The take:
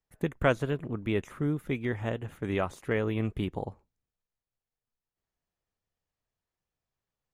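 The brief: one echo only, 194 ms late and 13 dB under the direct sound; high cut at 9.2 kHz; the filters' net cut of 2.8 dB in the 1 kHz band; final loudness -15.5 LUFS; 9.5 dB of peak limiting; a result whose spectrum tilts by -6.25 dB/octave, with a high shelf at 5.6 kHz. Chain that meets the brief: low-pass 9.2 kHz; peaking EQ 1 kHz -4 dB; treble shelf 5.6 kHz -3.5 dB; peak limiter -21.5 dBFS; delay 194 ms -13 dB; trim +18.5 dB

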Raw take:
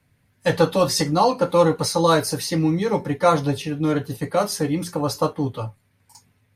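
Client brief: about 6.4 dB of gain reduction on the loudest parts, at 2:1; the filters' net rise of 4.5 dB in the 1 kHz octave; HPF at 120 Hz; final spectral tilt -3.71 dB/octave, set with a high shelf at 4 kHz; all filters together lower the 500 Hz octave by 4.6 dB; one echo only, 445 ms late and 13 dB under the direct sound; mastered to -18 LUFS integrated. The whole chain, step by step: high-pass 120 Hz; peaking EQ 500 Hz -7 dB; peaking EQ 1 kHz +7 dB; treble shelf 4 kHz +7.5 dB; compression 2:1, threshold -21 dBFS; delay 445 ms -13 dB; trim +5.5 dB

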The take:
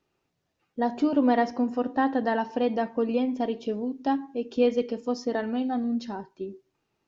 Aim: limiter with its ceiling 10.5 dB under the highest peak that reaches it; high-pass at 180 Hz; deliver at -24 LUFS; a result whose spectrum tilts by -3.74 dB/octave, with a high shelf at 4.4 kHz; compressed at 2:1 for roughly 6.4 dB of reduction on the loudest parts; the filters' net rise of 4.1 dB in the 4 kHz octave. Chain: high-pass 180 Hz; peaking EQ 4 kHz +3.5 dB; treble shelf 4.4 kHz +4 dB; compression 2:1, threshold -29 dBFS; trim +12 dB; peak limiter -14.5 dBFS

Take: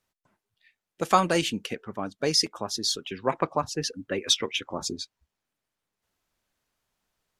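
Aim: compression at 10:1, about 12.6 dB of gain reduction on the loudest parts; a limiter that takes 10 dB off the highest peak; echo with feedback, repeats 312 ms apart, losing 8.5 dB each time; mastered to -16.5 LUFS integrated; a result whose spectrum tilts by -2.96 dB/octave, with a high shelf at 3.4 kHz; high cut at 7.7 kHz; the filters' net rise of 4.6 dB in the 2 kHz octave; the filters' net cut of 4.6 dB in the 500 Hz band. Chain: low-pass 7.7 kHz; peaking EQ 500 Hz -6 dB; peaking EQ 2 kHz +8 dB; treble shelf 3.4 kHz -5 dB; compression 10:1, threshold -27 dBFS; peak limiter -22 dBFS; feedback delay 312 ms, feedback 38%, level -8.5 dB; trim +18.5 dB

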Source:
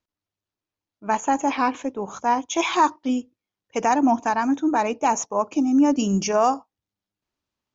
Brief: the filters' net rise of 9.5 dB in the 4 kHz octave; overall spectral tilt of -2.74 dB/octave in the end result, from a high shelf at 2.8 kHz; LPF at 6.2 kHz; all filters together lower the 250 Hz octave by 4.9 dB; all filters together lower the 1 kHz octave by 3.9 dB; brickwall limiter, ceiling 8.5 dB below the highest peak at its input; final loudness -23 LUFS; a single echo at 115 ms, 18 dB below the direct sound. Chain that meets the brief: low-pass 6.2 kHz; peaking EQ 250 Hz -5.5 dB; peaking EQ 1 kHz -5.5 dB; treble shelf 2.8 kHz +6 dB; peaking EQ 4 kHz +9 dB; peak limiter -16 dBFS; delay 115 ms -18 dB; trim +4 dB

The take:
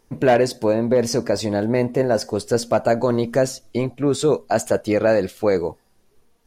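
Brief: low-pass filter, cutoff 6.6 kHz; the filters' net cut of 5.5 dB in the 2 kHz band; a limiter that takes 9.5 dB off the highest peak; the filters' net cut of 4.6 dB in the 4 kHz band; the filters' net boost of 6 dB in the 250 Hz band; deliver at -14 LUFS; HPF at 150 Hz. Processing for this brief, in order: high-pass 150 Hz; low-pass 6.6 kHz; peaking EQ 250 Hz +8 dB; peaking EQ 2 kHz -7 dB; peaking EQ 4 kHz -3.5 dB; trim +9.5 dB; peak limiter -3.5 dBFS

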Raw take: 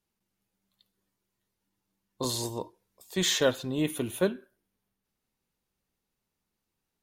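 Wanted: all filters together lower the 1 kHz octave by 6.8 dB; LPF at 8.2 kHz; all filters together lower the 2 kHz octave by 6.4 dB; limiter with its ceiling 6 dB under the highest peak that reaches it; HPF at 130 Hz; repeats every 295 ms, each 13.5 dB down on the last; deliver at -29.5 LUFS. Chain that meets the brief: high-pass 130 Hz; low-pass 8.2 kHz; peaking EQ 1 kHz -7 dB; peaking EQ 2 kHz -6 dB; peak limiter -20.5 dBFS; feedback delay 295 ms, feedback 21%, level -13.5 dB; trim +4 dB

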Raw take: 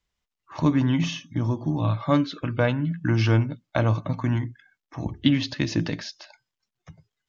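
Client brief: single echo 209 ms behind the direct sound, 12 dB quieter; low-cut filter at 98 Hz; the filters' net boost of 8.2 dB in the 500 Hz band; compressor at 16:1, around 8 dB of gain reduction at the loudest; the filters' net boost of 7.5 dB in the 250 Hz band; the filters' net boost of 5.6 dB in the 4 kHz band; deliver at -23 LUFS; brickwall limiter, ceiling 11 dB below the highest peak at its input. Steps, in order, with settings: high-pass 98 Hz; peaking EQ 250 Hz +6.5 dB; peaking EQ 500 Hz +8.5 dB; peaking EQ 4 kHz +7 dB; compression 16:1, threshold -15 dBFS; peak limiter -14 dBFS; delay 209 ms -12 dB; trim +2 dB

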